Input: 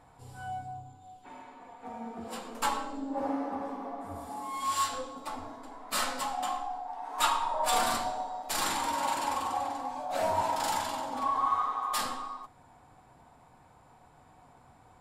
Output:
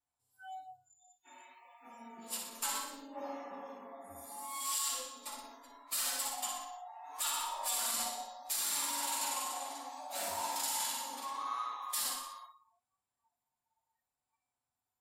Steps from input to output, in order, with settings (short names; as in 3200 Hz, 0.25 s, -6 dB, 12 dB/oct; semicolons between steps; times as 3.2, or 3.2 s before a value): 1.25–2.38 high shelf 3600 Hz +4.5 dB; flutter echo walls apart 10.3 m, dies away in 0.65 s; vibrato 0.71 Hz 26 cents; pre-emphasis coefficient 0.9; limiter -30 dBFS, peak gain reduction 10 dB; notch comb 160 Hz; spectral noise reduction 26 dB; gain +6.5 dB